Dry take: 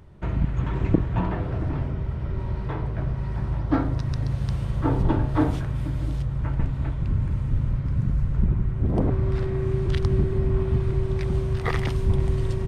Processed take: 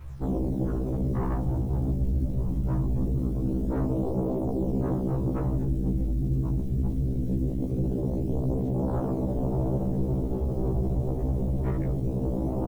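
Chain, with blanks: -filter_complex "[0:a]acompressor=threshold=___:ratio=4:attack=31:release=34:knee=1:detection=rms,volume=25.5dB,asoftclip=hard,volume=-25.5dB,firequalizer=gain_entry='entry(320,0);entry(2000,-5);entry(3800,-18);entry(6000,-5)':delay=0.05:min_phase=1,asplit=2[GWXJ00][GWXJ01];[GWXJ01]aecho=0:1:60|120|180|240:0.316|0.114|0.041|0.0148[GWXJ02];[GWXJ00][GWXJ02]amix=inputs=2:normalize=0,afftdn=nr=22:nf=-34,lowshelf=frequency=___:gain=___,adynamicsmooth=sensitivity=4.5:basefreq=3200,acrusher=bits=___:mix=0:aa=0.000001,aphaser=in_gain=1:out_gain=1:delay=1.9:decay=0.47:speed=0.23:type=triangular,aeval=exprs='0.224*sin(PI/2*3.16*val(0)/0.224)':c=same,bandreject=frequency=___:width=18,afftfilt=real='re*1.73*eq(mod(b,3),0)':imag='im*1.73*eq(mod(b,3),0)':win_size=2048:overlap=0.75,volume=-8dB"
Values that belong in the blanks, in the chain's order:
-27dB, 280, 3.5, 9, 4600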